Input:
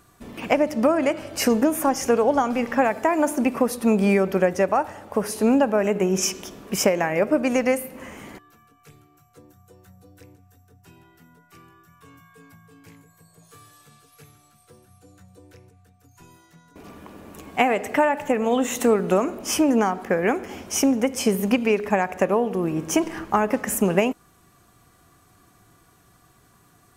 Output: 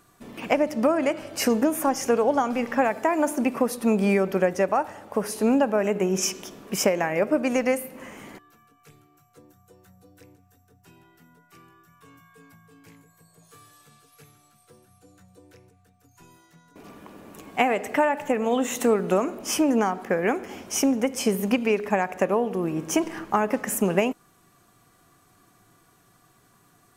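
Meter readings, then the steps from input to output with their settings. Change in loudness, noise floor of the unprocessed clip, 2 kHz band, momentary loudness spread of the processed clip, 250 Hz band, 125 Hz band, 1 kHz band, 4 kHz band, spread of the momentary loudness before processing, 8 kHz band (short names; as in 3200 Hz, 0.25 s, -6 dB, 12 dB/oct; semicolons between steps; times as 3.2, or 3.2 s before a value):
-2.0 dB, -58 dBFS, -2.0 dB, 7 LU, -2.5 dB, -3.0 dB, -2.0 dB, -2.0 dB, 7 LU, -2.0 dB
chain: bell 61 Hz -15 dB 0.75 oct; gain -2 dB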